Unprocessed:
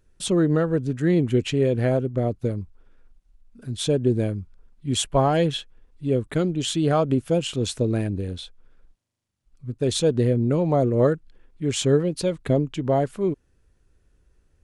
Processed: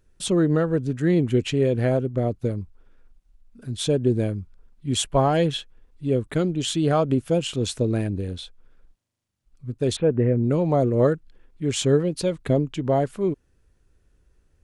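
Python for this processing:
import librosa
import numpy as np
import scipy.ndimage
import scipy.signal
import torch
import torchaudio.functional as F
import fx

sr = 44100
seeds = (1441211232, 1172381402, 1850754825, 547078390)

y = fx.steep_lowpass(x, sr, hz=2400.0, slope=36, at=(9.95, 10.42), fade=0.02)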